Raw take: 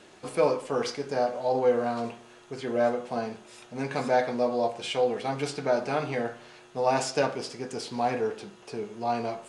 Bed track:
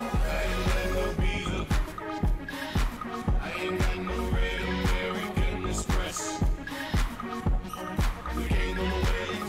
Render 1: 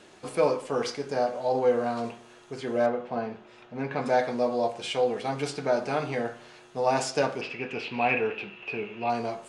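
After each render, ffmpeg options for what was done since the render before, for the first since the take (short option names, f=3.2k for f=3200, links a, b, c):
-filter_complex "[0:a]asettb=1/sr,asplit=3[a][b][c];[a]atrim=end=2.864[d];[b]atrim=start=2.86:end=4.06,asetpts=PTS-STARTPTS,afade=t=in:d=0.004:c=qsin,afade=t=out:st=1.196:d=0.004:c=qsin,lowpass=2.8k[e];[c]atrim=start=4.056[f];[d][e]acrossfade=d=0.004:c1=hsin:c2=qsin[g];[g][f]acrossfade=d=0.004:c1=qsin:c2=hsin,asettb=1/sr,asplit=3[h][i][j];[h]atrim=end=7.414[k];[i]atrim=start=7.41:end=9.1,asetpts=PTS-STARTPTS,afade=t=in:d=0.004:c=qsin,afade=t=out:st=1.686:d=0.004:c=qsin,lowpass=f=2.6k:t=q:w=12[l];[j]atrim=start=9.096[m];[k][l]acrossfade=d=0.004:c1=hsin:c2=qsin[n];[n][m]acrossfade=d=0.004:c1=qsin:c2=hsin"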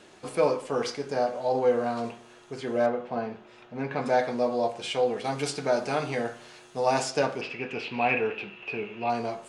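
-filter_complex "[0:a]asettb=1/sr,asplit=3[a][b][c];[a]atrim=end=5.244[d];[b]atrim=start=5.24:end=7.01,asetpts=PTS-STARTPTS,afade=t=in:d=0.004:c=qsin,afade=t=out:st=1.766:d=0.004:c=qsin,highshelf=f=4.7k:g=7.5[e];[c]atrim=start=7.006[f];[d][e]acrossfade=d=0.004:c1=hsin:c2=qsin[g];[g][f]acrossfade=d=0.004:c1=qsin:c2=hsin"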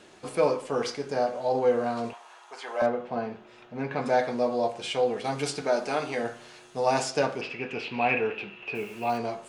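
-filter_complex "[0:a]asettb=1/sr,asplit=3[a][b][c];[a]atrim=end=2.134[d];[b]atrim=start=2.13:end=2.82,asetpts=PTS-STARTPTS,afade=t=in:d=0.004:c=qsin,afade=t=out:st=0.686:d=0.004:c=qsin,highpass=f=880:t=q:w=2.8[e];[c]atrim=start=2.816[f];[d][e]acrossfade=d=0.004:c1=hsin:c2=qsin[g];[g][f]acrossfade=d=0.004:c1=qsin:c2=hsin,asettb=1/sr,asplit=3[h][i][j];[h]atrim=end=5.614[k];[i]atrim=start=5.61:end=6.23,asetpts=PTS-STARTPTS,afade=t=in:d=0.004:c=qsin,afade=t=out:st=0.616:d=0.004:c=qsin,equalizer=f=110:w=1.6:g=-13[l];[j]atrim=start=6.226[m];[k][l]acrossfade=d=0.004:c1=hsin:c2=qsin[n];[n][m]acrossfade=d=0.004:c1=qsin:c2=hsin,asettb=1/sr,asplit=3[o][p][q];[o]atrim=end=8.754[r];[p]atrim=start=8.75:end=9.18,asetpts=PTS-STARTPTS,afade=t=in:d=0.004:c=qsin,afade=t=out:st=0.426:d=0.004:c=qsin,acrusher=bits=7:mix=0:aa=0.5[s];[q]atrim=start=9.176[t];[r][s]acrossfade=d=0.004:c1=hsin:c2=qsin[u];[u][t]acrossfade=d=0.004:c1=qsin:c2=hsin"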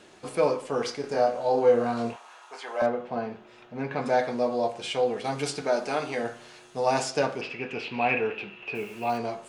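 -filter_complex "[0:a]asettb=1/sr,asplit=3[a][b][c];[a]atrim=end=1.014[d];[b]atrim=start=1.01:end=2.57,asetpts=PTS-STARTPTS,afade=t=in:d=0.004:c=qsin,afade=t=out:st=1.556:d=0.004:c=qsin,asplit=2[e][f];[f]adelay=26,volume=-4dB[g];[e][g]amix=inputs=2:normalize=0,atrim=end_sample=68796[h];[c]atrim=start=2.566[i];[d][h]acrossfade=d=0.004:c1=hsin:c2=qsin[j];[j][i]acrossfade=d=0.004:c1=qsin:c2=hsin"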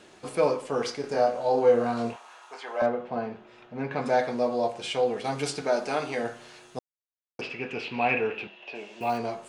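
-filter_complex "[0:a]asettb=1/sr,asplit=3[a][b][c];[a]atrim=end=2.544[d];[b]atrim=start=2.54:end=3.91,asetpts=PTS-STARTPTS,afade=t=in:d=0.004:c=qsin,afade=t=out:st=1.366:d=0.004:c=qsin,highshelf=f=7.4k:g=-9.5[e];[c]atrim=start=3.906[f];[d][e]acrossfade=d=0.004:c1=hsin:c2=qsin[g];[g][f]acrossfade=d=0.004:c1=qsin:c2=hsin,asettb=1/sr,asplit=3[h][i][j];[h]atrim=end=8.474[k];[i]atrim=start=8.47:end=9.01,asetpts=PTS-STARTPTS,afade=t=in:d=0.004:c=qsin,afade=t=out:st=0.536:d=0.004:c=qsin,highpass=360,equalizer=f=430:t=q:w=4:g=-8,equalizer=f=610:t=q:w=4:g=6,equalizer=f=1.3k:t=q:w=4:g=-10,equalizer=f=2.4k:t=q:w=4:g=-8,equalizer=f=3.5k:t=q:w=4:g=4,lowpass=f=6.8k:w=0.5412,lowpass=f=6.8k:w=1.3066[l];[j]atrim=start=9.006[m];[k][l]acrossfade=d=0.004:c1=hsin:c2=qsin[n];[n][m]acrossfade=d=0.004:c1=qsin:c2=hsin,asplit=3[o][p][q];[o]atrim=end=6.79,asetpts=PTS-STARTPTS,afade=t=out:st=6.786:d=0.004:c=hsin[r];[p]atrim=start=6.79:end=7.39,asetpts=PTS-STARTPTS,volume=0[s];[q]atrim=start=7.39,asetpts=PTS-STARTPTS,afade=t=in:d=0.004:c=hsin[t];[r][s][t]concat=n=3:v=0:a=1"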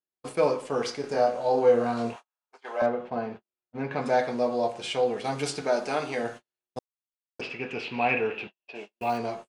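-af "agate=range=-49dB:threshold=-39dB:ratio=16:detection=peak"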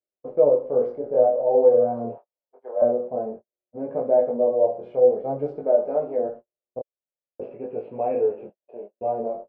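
-af "lowpass=f=560:t=q:w=4.9,flanger=delay=18:depth=6.7:speed=0.51"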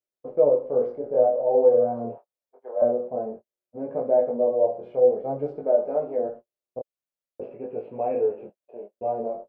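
-af "volume=-1.5dB"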